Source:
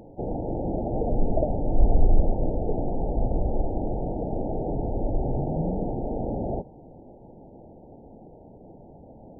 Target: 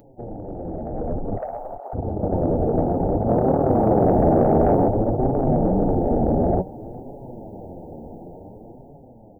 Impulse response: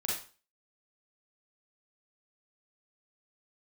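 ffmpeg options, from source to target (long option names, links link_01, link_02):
-filter_complex "[0:a]alimiter=limit=-17dB:level=0:latency=1:release=30,flanger=delay=6.9:depth=6.4:regen=37:speed=0.56:shape=triangular,asoftclip=type=tanh:threshold=-20.5dB,asplit=3[link_01][link_02][link_03];[link_01]afade=type=out:start_time=1.37:duration=0.02[link_04];[link_02]highpass=frequency=640:width=0.5412,highpass=frequency=640:width=1.3066,afade=type=in:start_time=1.37:duration=0.02,afade=type=out:start_time=1.93:duration=0.02[link_05];[link_03]afade=type=in:start_time=1.93:duration=0.02[link_06];[link_04][link_05][link_06]amix=inputs=3:normalize=0,aecho=1:1:407:0.0668,dynaudnorm=framelen=230:gausssize=13:maxgain=14dB,aemphasis=mode=production:type=50kf,asettb=1/sr,asplit=3[link_07][link_08][link_09];[link_07]atrim=end=3.284[link_10];[link_08]atrim=start=3.28:end=4.88,asetpts=PTS-STARTPTS,afade=type=in:duration=0.004:curve=qsin,afade=type=out:start_time=1.596:duration=0.004:curve=qsin,acontrast=54[link_11];[link_09]atrim=start=4.876[link_12];[link_10][link_11]acrossfade=duration=0.004:curve1=hsin:curve2=qsin[link_13];[link_13][link_12]acrossfade=duration=0.004:curve1=qsin:curve2=hsin,afftfilt=real='re*lt(hypot(re,im),1.26)':imag='im*lt(hypot(re,im),1.26)':win_size=1024:overlap=0.75"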